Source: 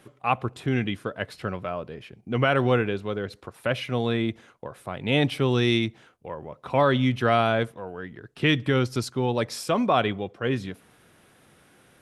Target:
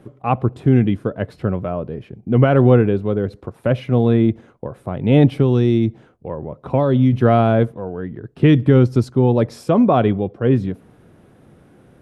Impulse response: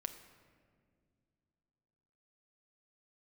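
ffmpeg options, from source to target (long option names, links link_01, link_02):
-filter_complex "[0:a]asettb=1/sr,asplit=3[link_01][link_02][link_03];[link_01]atrim=end=5.384[link_04];[link_02]atrim=start=5.38:end=7.13,asetpts=PTS-STARTPTS,afade=type=in:duration=0.004:curve=qsin,afade=type=out:start_time=1.746:duration=0.004:curve=qsin,acrossover=split=1100|2900[link_05][link_06][link_07];[link_05]acompressor=threshold=-22dB:ratio=4[link_08];[link_06]acompressor=threshold=-40dB:ratio=4[link_09];[link_07]acompressor=threshold=-34dB:ratio=4[link_10];[link_08][link_09][link_10]amix=inputs=3:normalize=0[link_11];[link_03]atrim=start=7.126[link_12];[link_04][link_11]acrossfade=duration=0.004:curve1=hsin:curve2=qsin[link_13];[link_13][link_12]acrossfade=duration=0.004:curve1=qsin:curve2=hsin,tiltshelf=frequency=970:gain=10,volume=3dB"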